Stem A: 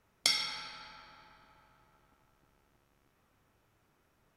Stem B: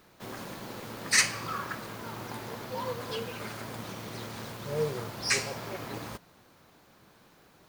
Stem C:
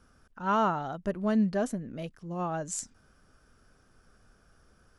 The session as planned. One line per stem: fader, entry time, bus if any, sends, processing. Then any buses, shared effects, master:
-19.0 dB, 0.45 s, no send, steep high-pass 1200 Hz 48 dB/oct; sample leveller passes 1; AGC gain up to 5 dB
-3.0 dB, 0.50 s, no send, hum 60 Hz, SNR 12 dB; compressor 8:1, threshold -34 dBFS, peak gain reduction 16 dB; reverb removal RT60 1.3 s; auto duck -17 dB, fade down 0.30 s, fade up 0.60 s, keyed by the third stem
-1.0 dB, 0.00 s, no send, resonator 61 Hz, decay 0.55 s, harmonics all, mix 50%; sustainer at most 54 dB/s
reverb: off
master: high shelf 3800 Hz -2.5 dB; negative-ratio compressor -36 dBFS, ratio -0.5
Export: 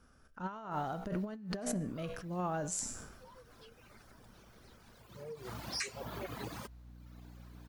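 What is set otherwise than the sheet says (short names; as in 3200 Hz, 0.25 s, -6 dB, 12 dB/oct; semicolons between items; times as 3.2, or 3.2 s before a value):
stem A: muted; master: missing high shelf 3800 Hz -2.5 dB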